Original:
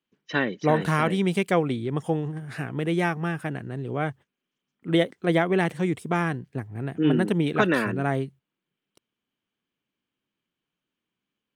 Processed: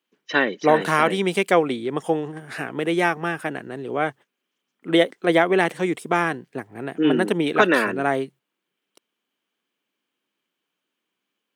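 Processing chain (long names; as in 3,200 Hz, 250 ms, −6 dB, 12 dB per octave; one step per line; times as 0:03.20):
high-pass filter 310 Hz 12 dB per octave
level +6 dB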